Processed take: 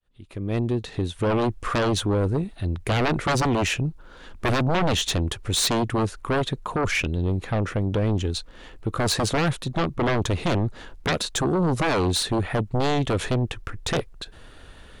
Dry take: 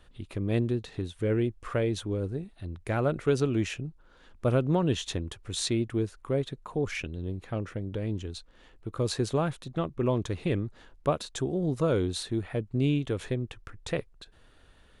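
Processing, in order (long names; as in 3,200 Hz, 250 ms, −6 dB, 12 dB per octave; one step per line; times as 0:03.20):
fade in at the beginning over 1.52 s
sine wavefolder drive 14 dB, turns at −12.5 dBFS
level −5.5 dB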